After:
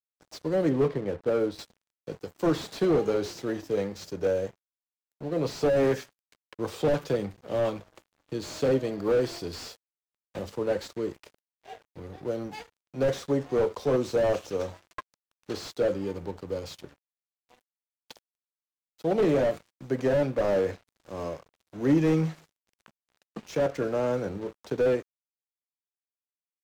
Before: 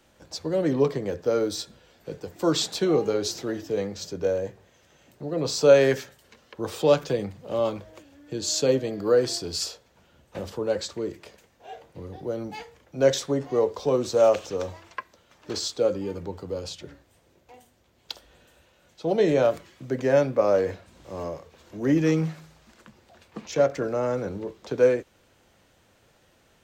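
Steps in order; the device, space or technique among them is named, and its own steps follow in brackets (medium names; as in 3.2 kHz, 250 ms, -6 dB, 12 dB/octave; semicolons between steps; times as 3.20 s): 0.69–1.59 s: distance through air 280 m; early transistor amplifier (crossover distortion -46.5 dBFS; slew-rate limiter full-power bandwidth 47 Hz)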